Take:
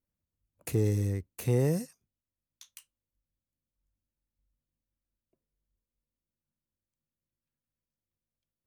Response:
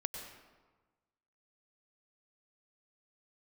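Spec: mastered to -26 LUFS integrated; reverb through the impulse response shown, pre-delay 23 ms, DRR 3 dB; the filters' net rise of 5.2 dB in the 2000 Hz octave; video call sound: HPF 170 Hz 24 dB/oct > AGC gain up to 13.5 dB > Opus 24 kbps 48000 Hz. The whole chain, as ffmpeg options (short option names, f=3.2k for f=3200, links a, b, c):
-filter_complex "[0:a]equalizer=f=2k:t=o:g=6,asplit=2[a][b];[1:a]atrim=start_sample=2205,adelay=23[c];[b][c]afir=irnorm=-1:irlink=0,volume=-3.5dB[d];[a][d]amix=inputs=2:normalize=0,highpass=f=170:w=0.5412,highpass=f=170:w=1.3066,dynaudnorm=m=13.5dB,volume=6dB" -ar 48000 -c:a libopus -b:a 24k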